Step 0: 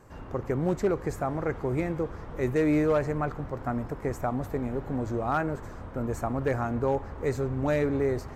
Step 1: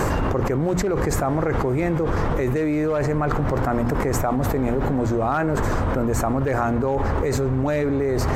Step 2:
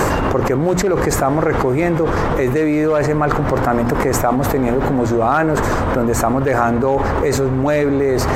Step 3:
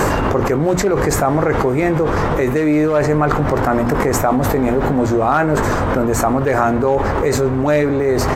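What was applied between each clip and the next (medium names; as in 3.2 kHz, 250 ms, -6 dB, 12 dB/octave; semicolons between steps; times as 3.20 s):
hum notches 60/120/180/240 Hz; level flattener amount 100%
bass shelf 170 Hz -7 dB; trim +7.5 dB
doubling 20 ms -11 dB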